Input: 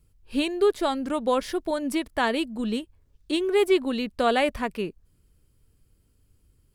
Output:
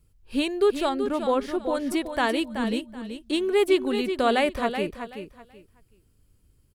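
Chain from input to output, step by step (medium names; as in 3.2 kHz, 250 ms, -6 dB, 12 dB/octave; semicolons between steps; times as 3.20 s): 0.89–1.75 s: treble shelf 3.3 kHz -10 dB; feedback delay 378 ms, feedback 22%, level -8.5 dB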